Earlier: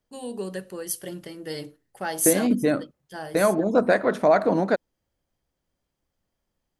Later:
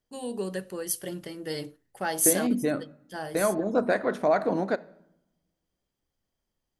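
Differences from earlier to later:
second voice -6.0 dB; reverb: on, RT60 0.85 s

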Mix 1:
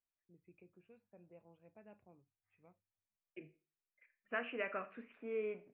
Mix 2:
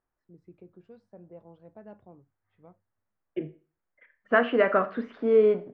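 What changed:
second voice +7.5 dB; master: remove ladder low-pass 2600 Hz, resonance 85%

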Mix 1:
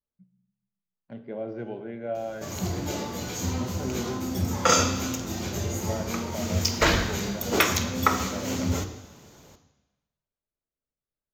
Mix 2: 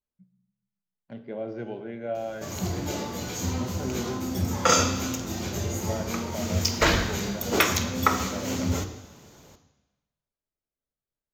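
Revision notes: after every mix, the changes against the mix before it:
speech: add high shelf 3800 Hz +8 dB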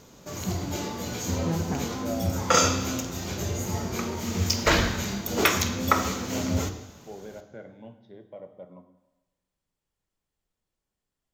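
first voice -3.5 dB; second voice: unmuted; background: entry -2.15 s

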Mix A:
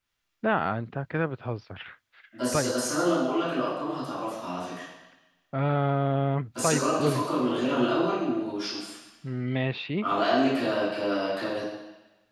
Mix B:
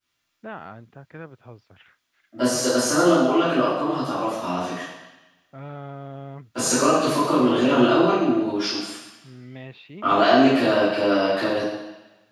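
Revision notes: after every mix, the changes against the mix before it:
first voice -11.5 dB; second voice: send +7.5 dB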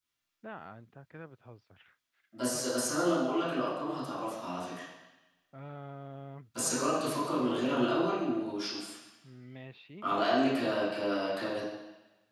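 first voice -8.0 dB; second voice: send -11.5 dB

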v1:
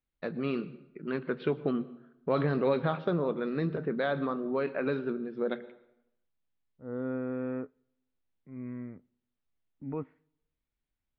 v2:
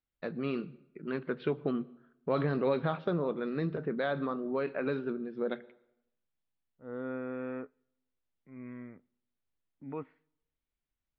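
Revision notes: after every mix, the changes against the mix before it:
first voice: send -7.5 dB; second voice: add tilt +2.5 dB/oct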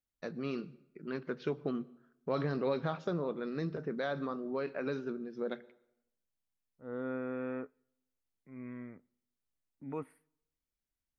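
first voice -3.5 dB; master: remove steep low-pass 3900 Hz 36 dB/oct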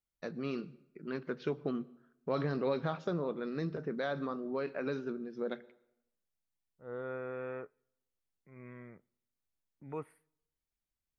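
second voice: add bell 260 Hz -12 dB 0.26 oct

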